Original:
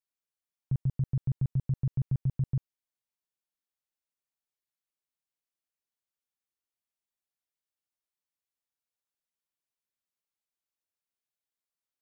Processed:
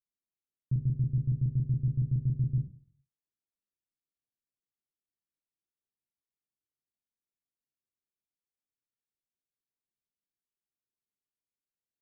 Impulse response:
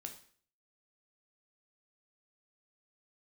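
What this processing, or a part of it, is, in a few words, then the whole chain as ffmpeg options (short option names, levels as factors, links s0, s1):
next room: -filter_complex "[0:a]lowpass=f=430:w=0.5412,lowpass=f=430:w=1.3066[s0];[1:a]atrim=start_sample=2205[s1];[s0][s1]afir=irnorm=-1:irlink=0,volume=1.58"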